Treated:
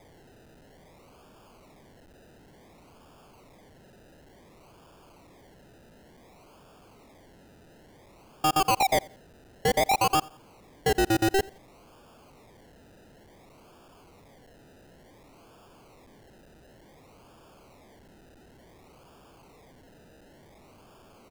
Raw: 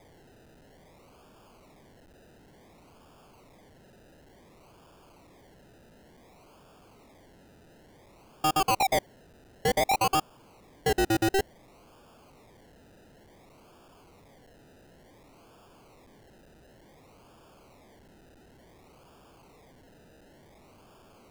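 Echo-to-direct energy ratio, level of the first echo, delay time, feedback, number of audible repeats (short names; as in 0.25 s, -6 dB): -23.0 dB, -23.5 dB, 87 ms, 30%, 2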